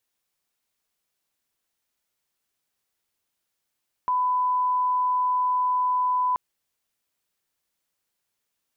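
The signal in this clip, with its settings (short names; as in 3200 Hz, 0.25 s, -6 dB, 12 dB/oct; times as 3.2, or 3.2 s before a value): line-up tone -20 dBFS 2.28 s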